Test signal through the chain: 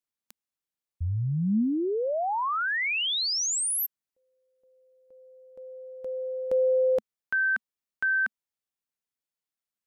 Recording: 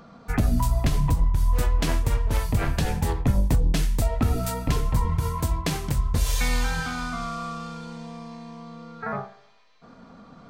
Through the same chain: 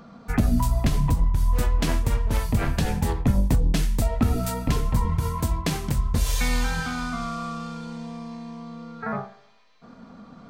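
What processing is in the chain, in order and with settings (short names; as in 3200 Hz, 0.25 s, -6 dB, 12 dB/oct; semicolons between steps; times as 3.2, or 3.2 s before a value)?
bell 220 Hz +5 dB 0.47 oct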